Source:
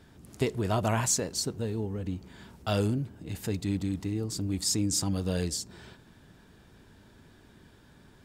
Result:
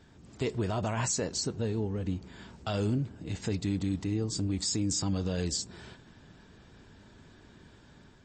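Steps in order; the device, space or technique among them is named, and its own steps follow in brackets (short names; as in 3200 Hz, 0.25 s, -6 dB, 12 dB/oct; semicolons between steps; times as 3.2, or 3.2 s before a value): low-bitrate web radio (AGC gain up to 3 dB; limiter -19.5 dBFS, peak gain reduction 8 dB; gain -1.5 dB; MP3 32 kbps 24000 Hz)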